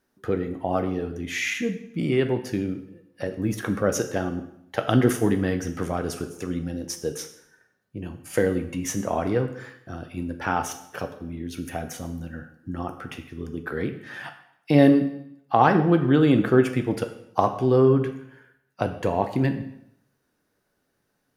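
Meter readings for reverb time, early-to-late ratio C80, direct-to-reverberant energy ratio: 0.75 s, 13.0 dB, 6.5 dB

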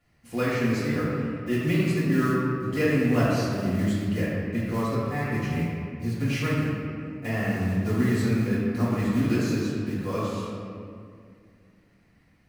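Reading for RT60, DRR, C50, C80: 2.2 s, -11.0 dB, -2.5 dB, -0.5 dB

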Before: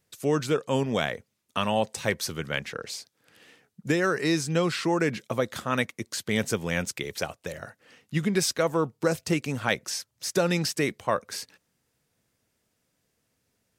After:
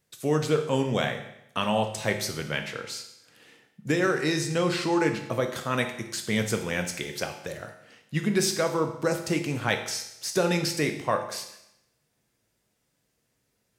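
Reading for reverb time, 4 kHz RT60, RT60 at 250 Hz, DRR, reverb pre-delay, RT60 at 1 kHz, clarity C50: 0.80 s, 0.80 s, 0.80 s, 4.5 dB, 8 ms, 0.80 s, 9.0 dB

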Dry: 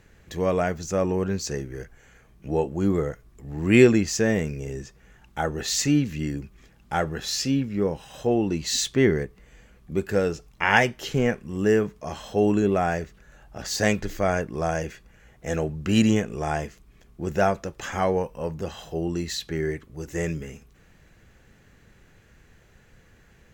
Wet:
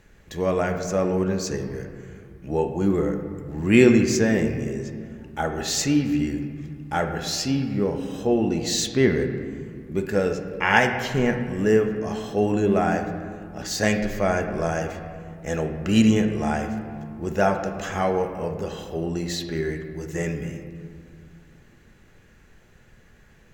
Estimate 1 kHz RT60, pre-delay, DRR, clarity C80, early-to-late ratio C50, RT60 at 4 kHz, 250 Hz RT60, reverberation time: 2.1 s, 4 ms, 5.0 dB, 8.5 dB, 7.0 dB, 1.2 s, 3.4 s, 2.2 s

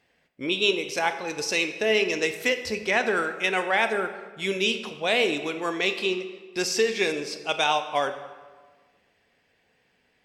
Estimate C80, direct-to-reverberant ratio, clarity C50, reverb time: 11.5 dB, 8.0 dB, 10.0 dB, 1.4 s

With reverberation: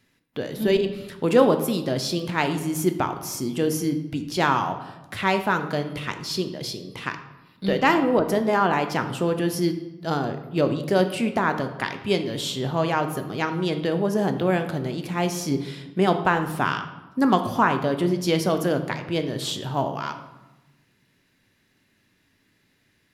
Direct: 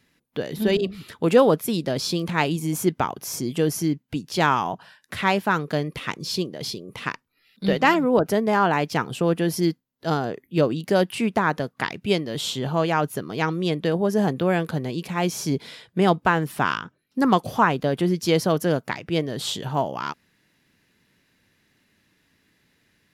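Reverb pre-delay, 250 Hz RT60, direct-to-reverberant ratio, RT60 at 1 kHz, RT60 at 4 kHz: 3 ms, 1.5 s, 7.0 dB, 1.1 s, 0.70 s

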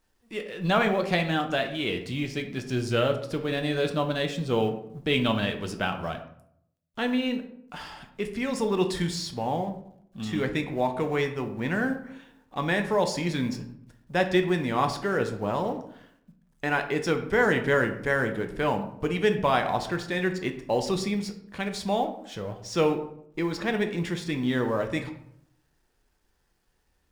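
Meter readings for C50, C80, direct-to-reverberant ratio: 10.5 dB, 13.0 dB, 5.0 dB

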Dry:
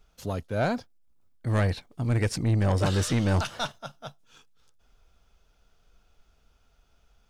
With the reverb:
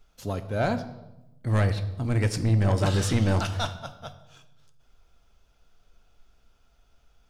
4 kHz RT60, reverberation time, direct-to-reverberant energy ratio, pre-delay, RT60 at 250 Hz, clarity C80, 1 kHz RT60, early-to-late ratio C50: 0.75 s, 0.95 s, 9.0 dB, 3 ms, 1.2 s, 15.0 dB, 0.90 s, 13.0 dB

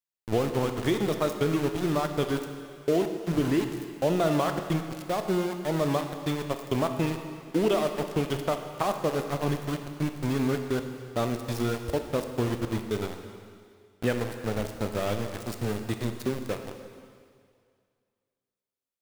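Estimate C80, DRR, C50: 8.0 dB, 6.0 dB, 7.0 dB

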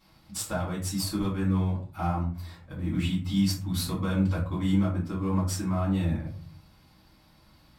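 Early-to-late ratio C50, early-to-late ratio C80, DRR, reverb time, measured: 7.0 dB, 12.0 dB, -9.0 dB, 0.40 s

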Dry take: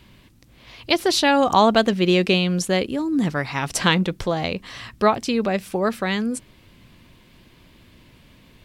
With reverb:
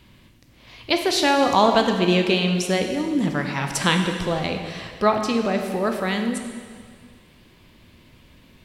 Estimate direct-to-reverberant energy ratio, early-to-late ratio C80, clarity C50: 4.0 dB, 7.0 dB, 5.5 dB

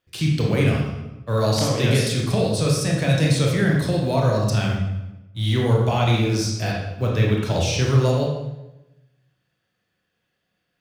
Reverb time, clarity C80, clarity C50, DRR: 1.0 s, 5.0 dB, 1.5 dB, -2.0 dB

